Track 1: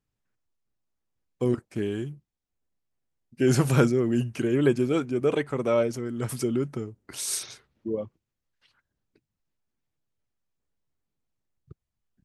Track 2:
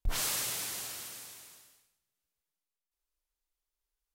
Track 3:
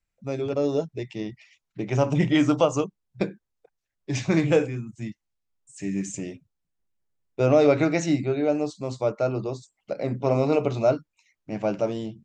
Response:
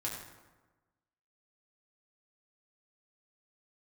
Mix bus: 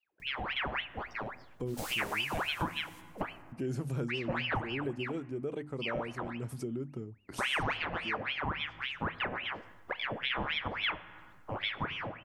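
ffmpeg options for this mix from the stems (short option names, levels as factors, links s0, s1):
-filter_complex "[0:a]tiltshelf=f=630:g=5,bandreject=f=50:t=h:w=6,bandreject=f=100:t=h:w=6,bandreject=f=150:t=h:w=6,bandreject=f=200:t=h:w=6,bandreject=f=250:t=h:w=6,bandreject=f=300:t=h:w=6,acompressor=mode=upward:threshold=0.0501:ratio=2.5,adelay=200,volume=0.316[s0];[1:a]aeval=exprs='clip(val(0),-1,0.0133)':c=same,adelay=1550,volume=0.531,asplit=2[s1][s2];[s2]volume=0.168[s3];[2:a]lowpass=1500,equalizer=f=340:w=5.6:g=-11.5,aeval=exprs='val(0)*sin(2*PI*1600*n/s+1600*0.8/3.6*sin(2*PI*3.6*n/s))':c=same,volume=1,asplit=3[s4][s5][s6];[s5]volume=0.188[s7];[s6]apad=whole_len=251332[s8];[s1][s8]sidechaingate=range=0.126:threshold=0.00398:ratio=16:detection=peak[s9];[3:a]atrim=start_sample=2205[s10];[s3][s7]amix=inputs=2:normalize=0[s11];[s11][s10]afir=irnorm=-1:irlink=0[s12];[s0][s9][s4][s12]amix=inputs=4:normalize=0,acompressor=threshold=0.0178:ratio=2.5"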